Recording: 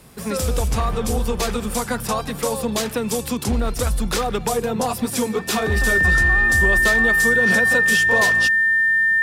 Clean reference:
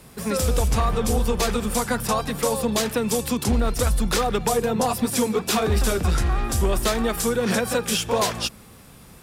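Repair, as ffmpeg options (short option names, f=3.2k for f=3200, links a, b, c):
-af "bandreject=f=1.8k:w=30"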